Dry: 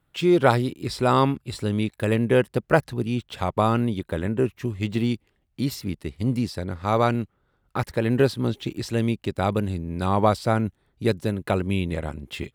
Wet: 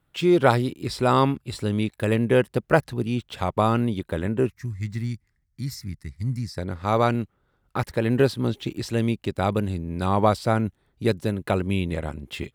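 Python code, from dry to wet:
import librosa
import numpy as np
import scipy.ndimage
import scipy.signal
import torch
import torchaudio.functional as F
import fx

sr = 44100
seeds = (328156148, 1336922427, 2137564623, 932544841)

y = fx.curve_eq(x, sr, hz=(130.0, 500.0, 2000.0, 2900.0, 5200.0, 12000.0), db=(0, -21, -1, -19, 0, -5), at=(4.5, 6.58))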